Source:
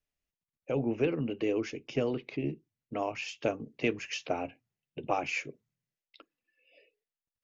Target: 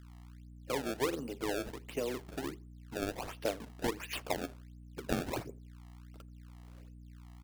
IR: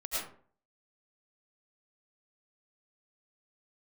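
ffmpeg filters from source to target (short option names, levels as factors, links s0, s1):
-filter_complex "[0:a]asettb=1/sr,asplit=3[s0][s1][s2];[s0]atrim=end=1.204[s3];[s1]atrim=start=1.2:end=2.1,asetpts=PTS-STARTPTS,afade=t=in:d=0.004:c=qsin,afade=t=out:st=0.896:d=0.004:c=qsin,aeval=exprs='if(lt(val(0),0),0.708*val(0),val(0))':c=same[s4];[s2]atrim=start=2.096[s5];[s3][s4]acrossfade=d=0.004:c1=hsin:c2=qsin[s6];[s6][s5]acrossfade=d=0.004:c1=qsin:c2=hsin,acrossover=split=260|1000[s7][s8][s9];[s7]acompressor=threshold=0.00355:ratio=6[s10];[s10][s8][s9]amix=inputs=3:normalize=0,aeval=exprs='val(0)+0.00398*(sin(2*PI*60*n/s)+sin(2*PI*2*60*n/s)/2+sin(2*PI*3*60*n/s)/3+sin(2*PI*4*60*n/s)/4+sin(2*PI*5*60*n/s)/5)':c=same,acrusher=samples=25:mix=1:aa=0.000001:lfo=1:lforange=40:lforate=1.4,asplit=2[s11][s12];[s12]adelay=83,lowpass=f=920:p=1,volume=0.0794,asplit=2[s13][s14];[s14]adelay=83,lowpass=f=920:p=1,volume=0.32[s15];[s11][s13][s15]amix=inputs=3:normalize=0,volume=0.708"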